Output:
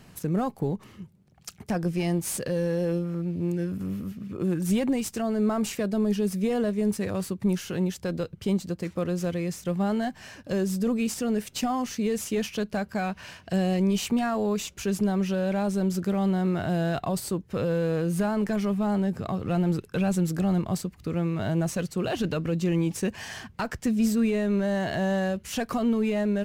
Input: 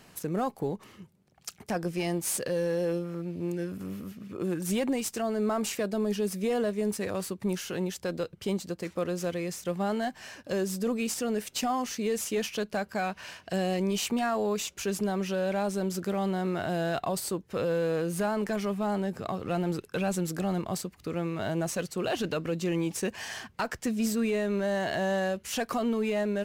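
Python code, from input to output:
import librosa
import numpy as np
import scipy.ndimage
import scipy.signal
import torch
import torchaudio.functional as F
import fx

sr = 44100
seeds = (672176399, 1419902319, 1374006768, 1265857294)

y = fx.bass_treble(x, sr, bass_db=9, treble_db=-1)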